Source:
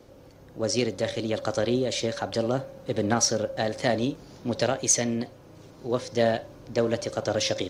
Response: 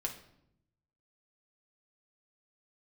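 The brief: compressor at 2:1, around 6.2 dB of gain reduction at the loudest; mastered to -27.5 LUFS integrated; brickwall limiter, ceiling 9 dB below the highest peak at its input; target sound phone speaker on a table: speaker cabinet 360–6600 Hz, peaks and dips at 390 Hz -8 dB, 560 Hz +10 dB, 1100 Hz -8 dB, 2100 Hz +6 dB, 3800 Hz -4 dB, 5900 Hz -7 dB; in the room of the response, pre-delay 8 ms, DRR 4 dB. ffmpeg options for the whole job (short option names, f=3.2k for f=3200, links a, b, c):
-filter_complex "[0:a]acompressor=threshold=-29dB:ratio=2,alimiter=limit=-23dB:level=0:latency=1,asplit=2[a][b];[1:a]atrim=start_sample=2205,adelay=8[c];[b][c]afir=irnorm=-1:irlink=0,volume=-5dB[d];[a][d]amix=inputs=2:normalize=0,highpass=f=360:w=0.5412,highpass=f=360:w=1.3066,equalizer=f=390:t=q:w=4:g=-8,equalizer=f=560:t=q:w=4:g=10,equalizer=f=1.1k:t=q:w=4:g=-8,equalizer=f=2.1k:t=q:w=4:g=6,equalizer=f=3.8k:t=q:w=4:g=-4,equalizer=f=5.9k:t=q:w=4:g=-7,lowpass=f=6.6k:w=0.5412,lowpass=f=6.6k:w=1.3066,volume=4dB"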